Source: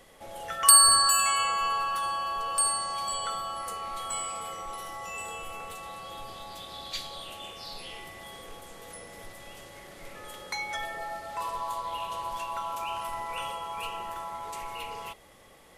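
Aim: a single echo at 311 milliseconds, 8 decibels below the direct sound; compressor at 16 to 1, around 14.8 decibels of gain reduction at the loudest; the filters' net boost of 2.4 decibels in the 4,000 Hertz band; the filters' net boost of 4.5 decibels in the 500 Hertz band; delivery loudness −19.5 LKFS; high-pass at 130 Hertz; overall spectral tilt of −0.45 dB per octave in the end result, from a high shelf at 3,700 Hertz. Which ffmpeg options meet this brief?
ffmpeg -i in.wav -af "highpass=130,equalizer=frequency=500:width_type=o:gain=6,highshelf=frequency=3700:gain=-5,equalizer=frequency=4000:width_type=o:gain=6,acompressor=threshold=-28dB:ratio=16,aecho=1:1:311:0.398,volume=14dB" out.wav

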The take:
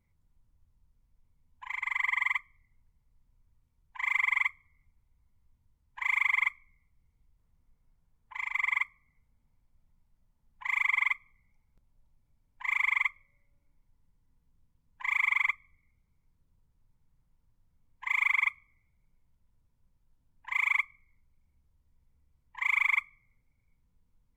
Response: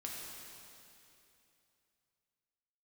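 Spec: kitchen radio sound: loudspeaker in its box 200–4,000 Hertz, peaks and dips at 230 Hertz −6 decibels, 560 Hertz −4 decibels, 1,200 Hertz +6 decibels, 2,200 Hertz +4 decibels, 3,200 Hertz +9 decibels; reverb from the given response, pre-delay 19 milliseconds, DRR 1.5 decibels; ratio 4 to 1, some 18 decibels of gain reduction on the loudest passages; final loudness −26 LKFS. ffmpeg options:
-filter_complex "[0:a]acompressor=threshold=-46dB:ratio=4,asplit=2[link_01][link_02];[1:a]atrim=start_sample=2205,adelay=19[link_03];[link_02][link_03]afir=irnorm=-1:irlink=0,volume=-1dB[link_04];[link_01][link_04]amix=inputs=2:normalize=0,highpass=200,equalizer=frequency=230:width_type=q:width=4:gain=-6,equalizer=frequency=560:width_type=q:width=4:gain=-4,equalizer=frequency=1200:width_type=q:width=4:gain=6,equalizer=frequency=2200:width_type=q:width=4:gain=4,equalizer=frequency=3200:width_type=q:width=4:gain=9,lowpass=frequency=4000:width=0.5412,lowpass=frequency=4000:width=1.3066,volume=14.5dB"

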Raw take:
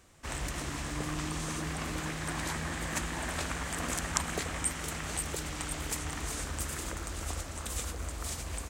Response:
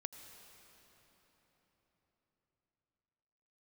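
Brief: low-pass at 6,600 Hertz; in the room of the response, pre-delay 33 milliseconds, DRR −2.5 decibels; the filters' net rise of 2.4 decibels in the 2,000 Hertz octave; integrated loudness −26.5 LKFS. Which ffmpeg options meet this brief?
-filter_complex "[0:a]lowpass=6600,equalizer=frequency=2000:width_type=o:gain=3,asplit=2[link_01][link_02];[1:a]atrim=start_sample=2205,adelay=33[link_03];[link_02][link_03]afir=irnorm=-1:irlink=0,volume=5.5dB[link_04];[link_01][link_04]amix=inputs=2:normalize=0,volume=5dB"

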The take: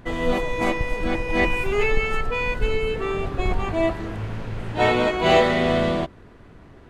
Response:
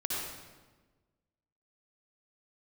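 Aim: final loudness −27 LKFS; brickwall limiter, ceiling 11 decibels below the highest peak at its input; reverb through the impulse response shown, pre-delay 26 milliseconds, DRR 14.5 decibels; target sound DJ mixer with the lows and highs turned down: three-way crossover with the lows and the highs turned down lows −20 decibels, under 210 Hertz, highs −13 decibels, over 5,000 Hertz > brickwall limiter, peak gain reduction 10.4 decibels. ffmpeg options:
-filter_complex "[0:a]alimiter=limit=-15.5dB:level=0:latency=1,asplit=2[link_01][link_02];[1:a]atrim=start_sample=2205,adelay=26[link_03];[link_02][link_03]afir=irnorm=-1:irlink=0,volume=-19.5dB[link_04];[link_01][link_04]amix=inputs=2:normalize=0,acrossover=split=210 5000:gain=0.1 1 0.224[link_05][link_06][link_07];[link_05][link_06][link_07]amix=inputs=3:normalize=0,volume=5.5dB,alimiter=limit=-19dB:level=0:latency=1"

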